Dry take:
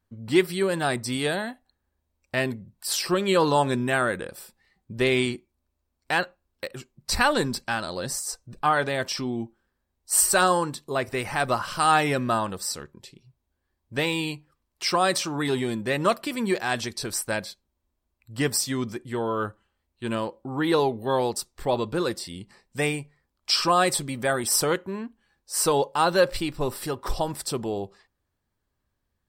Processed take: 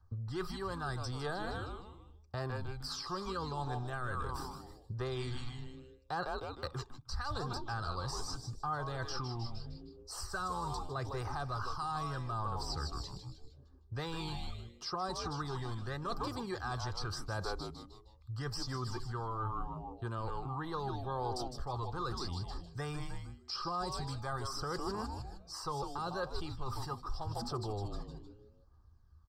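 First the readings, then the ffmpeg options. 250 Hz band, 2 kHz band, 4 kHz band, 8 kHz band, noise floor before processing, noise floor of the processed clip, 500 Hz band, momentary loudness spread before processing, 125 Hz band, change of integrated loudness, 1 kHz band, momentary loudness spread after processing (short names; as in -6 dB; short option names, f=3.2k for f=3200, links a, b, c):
-15.5 dB, -17.0 dB, -13.5 dB, -21.5 dB, -79 dBFS, -61 dBFS, -16.5 dB, 14 LU, -5.0 dB, -14.5 dB, -12.0 dB, 8 LU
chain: -filter_complex "[0:a]firequalizer=gain_entry='entry(110,0);entry(240,-15);entry(1200,0);entry(2200,-26);entry(4900,-6);entry(8700,-23)':delay=0.05:min_phase=1,acrossover=split=250|2000[a][b][c];[b]alimiter=limit=-23dB:level=0:latency=1:release=416[d];[a][d][c]amix=inputs=3:normalize=0,equalizer=f=75:t=o:w=0.3:g=8.5,asplit=6[e][f][g][h][i][j];[f]adelay=154,afreqshift=-130,volume=-9.5dB[k];[g]adelay=308,afreqshift=-260,volume=-17dB[l];[h]adelay=462,afreqshift=-390,volume=-24.6dB[m];[i]adelay=616,afreqshift=-520,volume=-32.1dB[n];[j]adelay=770,afreqshift=-650,volume=-39.6dB[o];[e][k][l][m][n][o]amix=inputs=6:normalize=0,areverse,acompressor=threshold=-41dB:ratio=8,areverse,aphaser=in_gain=1:out_gain=1:delay=1.1:decay=0.37:speed=0.8:type=triangular,acrossover=split=730|4000[p][q][r];[p]acompressor=threshold=-46dB:ratio=4[s];[q]acompressor=threshold=-48dB:ratio=4[t];[r]acompressor=threshold=-57dB:ratio=4[u];[s][t][u]amix=inputs=3:normalize=0,aecho=1:1:2.5:0.33,volume=8.5dB"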